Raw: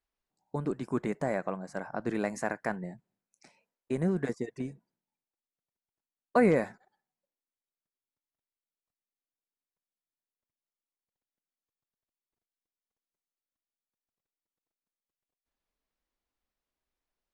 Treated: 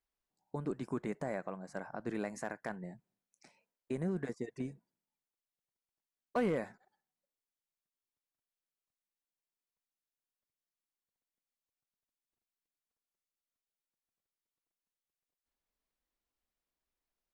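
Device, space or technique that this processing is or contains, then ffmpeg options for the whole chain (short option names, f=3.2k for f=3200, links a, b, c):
clipper into limiter: -af "asoftclip=type=hard:threshold=-17.5dB,alimiter=limit=-22.5dB:level=0:latency=1:release=319,volume=-3.5dB"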